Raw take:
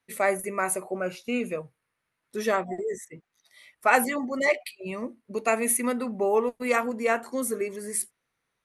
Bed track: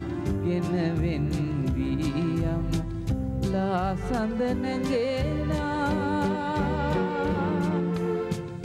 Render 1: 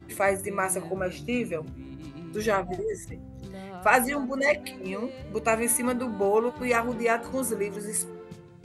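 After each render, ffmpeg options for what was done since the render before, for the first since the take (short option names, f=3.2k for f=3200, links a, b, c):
-filter_complex "[1:a]volume=-14.5dB[a];[0:a][a]amix=inputs=2:normalize=0"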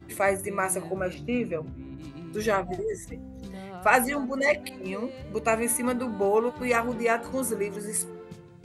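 -filter_complex "[0:a]asettb=1/sr,asplit=3[a][b][c];[a]atrim=end=1.144[d];[b]atrim=start=1.14:end=1.98,asetpts=PTS-STARTPTS,afade=t=in:d=0.004:c=qsin,afade=t=out:st=0.836:d=0.004:c=qsin,aemphasis=mode=reproduction:type=75fm[e];[c]atrim=start=1.976[f];[d][e]acrossfade=d=0.004:c1=hsin:c2=qsin[g];[g][f]acrossfade=d=0.004:c1=qsin:c2=hsin,asettb=1/sr,asplit=3[h][i][j];[h]atrim=end=3.044[k];[i]atrim=start=3.04:end=3.57,asetpts=PTS-STARTPTS,afade=t=in:d=0.004:c=qsin,afade=t=out:st=0.526:d=0.004:c=qsin,aecho=1:1:4.2:0.65,atrim=end_sample=23373[l];[j]atrim=start=3.566[m];[k][l]acrossfade=d=0.004:c1=hsin:c2=qsin[n];[n][m]acrossfade=d=0.004:c1=qsin:c2=hsin,asettb=1/sr,asplit=3[o][p][q];[o]atrim=end=4.694[r];[p]atrim=start=4.69:end=5.87,asetpts=PTS-STARTPTS,afade=t=in:d=0.004:c=qsin,afade=t=out:st=1.176:d=0.004:c=qsin,adynamicequalizer=threshold=0.0112:dfrequency=1600:dqfactor=0.7:tfrequency=1600:tqfactor=0.7:attack=5:release=100:ratio=0.375:range=2:mode=cutabove:tftype=highshelf[s];[q]atrim=start=5.866[t];[r][s]acrossfade=d=0.004:c1=hsin:c2=qsin[u];[u][t]acrossfade=d=0.004:c1=qsin:c2=hsin"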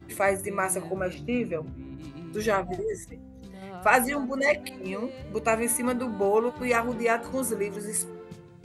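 -filter_complex "[0:a]asplit=3[a][b][c];[a]atrim=end=3.042[d];[b]atrim=start=3.038:end=3.622,asetpts=PTS-STARTPTS,volume=-4.5dB[e];[c]atrim=start=3.618[f];[d][e]acrossfade=d=0.004:c1=hsin:c2=hsin[g];[g][f]acrossfade=d=0.004:c1=hsin:c2=hsin"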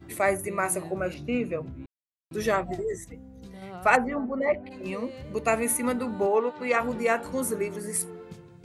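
-filter_complex "[0:a]asplit=3[a][b][c];[a]afade=t=out:st=3.95:d=0.02[d];[b]lowpass=1.3k,afade=t=in:st=3.95:d=0.02,afade=t=out:st=4.7:d=0.02[e];[c]afade=t=in:st=4.7:d=0.02[f];[d][e][f]amix=inputs=3:normalize=0,asplit=3[g][h][i];[g]afade=t=out:st=6.26:d=0.02[j];[h]highpass=260,lowpass=4.9k,afade=t=in:st=6.26:d=0.02,afade=t=out:st=6.79:d=0.02[k];[i]afade=t=in:st=6.79:d=0.02[l];[j][k][l]amix=inputs=3:normalize=0,asplit=3[m][n][o];[m]atrim=end=1.86,asetpts=PTS-STARTPTS,afade=t=out:st=1.856:d=0.004:c=hsin[p];[n]atrim=start=1.86:end=2.31,asetpts=PTS-STARTPTS,volume=0[q];[o]atrim=start=2.31,asetpts=PTS-STARTPTS,afade=t=in:d=0.004:c=hsin[r];[p][q][r]concat=n=3:v=0:a=1"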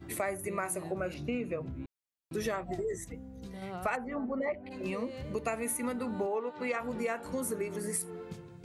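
-af "acompressor=threshold=-31dB:ratio=5"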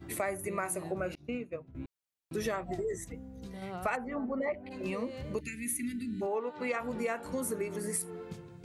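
-filter_complex "[0:a]asettb=1/sr,asplit=3[a][b][c];[a]atrim=end=1.154[d];[b]atrim=start=1.15:end=1.75,asetpts=PTS-STARTPTS,afade=t=in:d=0.004:c=qsin,afade=t=out:st=0.596:d=0.004:c=qsin,agate=range=-33dB:threshold=-30dB:ratio=3:release=100:detection=peak[e];[c]atrim=start=1.746[f];[d][e]acrossfade=d=0.004:c1=hsin:c2=qsin[g];[g][f]acrossfade=d=0.004:c1=qsin:c2=hsin,asplit=3[h][i][j];[h]afade=t=out:st=5.39:d=0.02[k];[i]asuperstop=centerf=790:order=12:qfactor=0.56,afade=t=in:st=5.39:d=0.02,afade=t=out:st=6.21:d=0.02[l];[j]afade=t=in:st=6.21:d=0.02[m];[k][l][m]amix=inputs=3:normalize=0"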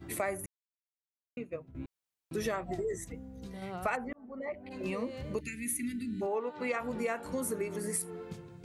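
-filter_complex "[0:a]asplit=4[a][b][c][d];[a]atrim=end=0.46,asetpts=PTS-STARTPTS,afade=t=out:st=0.456:d=0.004:c=hsin[e];[b]atrim=start=0.46:end=1.37,asetpts=PTS-STARTPTS,volume=0[f];[c]atrim=start=1.37:end=4.13,asetpts=PTS-STARTPTS,afade=t=in:d=0.004:c=hsin,afade=t=out:st=2.756:d=0.004:c=hsin[g];[d]atrim=start=4.13,asetpts=PTS-STARTPTS,afade=t=in:d=0.63[h];[e][f][g][h]concat=n=4:v=0:a=1"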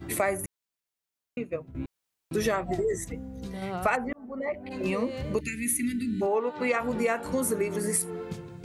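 -af "volume=7dB"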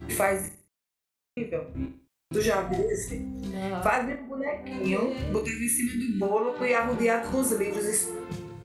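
-filter_complex "[0:a]asplit=2[a][b];[b]adelay=26,volume=-3.5dB[c];[a][c]amix=inputs=2:normalize=0,aecho=1:1:65|130|195:0.282|0.0902|0.0289"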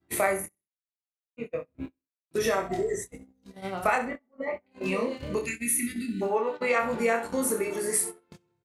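-af "agate=range=-29dB:threshold=-31dB:ratio=16:detection=peak,lowshelf=f=180:g=-9.5"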